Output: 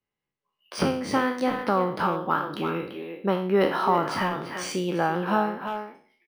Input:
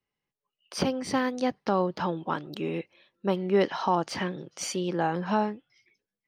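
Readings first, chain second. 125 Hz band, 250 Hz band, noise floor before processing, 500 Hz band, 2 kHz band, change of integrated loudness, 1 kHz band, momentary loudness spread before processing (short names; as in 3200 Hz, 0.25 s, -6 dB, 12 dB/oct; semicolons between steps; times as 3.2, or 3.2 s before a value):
+2.0 dB, +2.0 dB, under -85 dBFS, +2.5 dB, +5.5 dB, +3.0 dB, +4.5 dB, 9 LU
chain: spectral trails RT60 0.49 s; dynamic EQ 1300 Hz, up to +7 dB, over -45 dBFS, Q 2.9; AGC gain up to 7.5 dB; speakerphone echo 0.34 s, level -7 dB; in parallel at -2.5 dB: compressor, threshold -25 dBFS, peak gain reduction 14 dB; on the sum: high shelf 8800 Hz -11.5 dB; decimation joined by straight lines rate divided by 3×; gain -7.5 dB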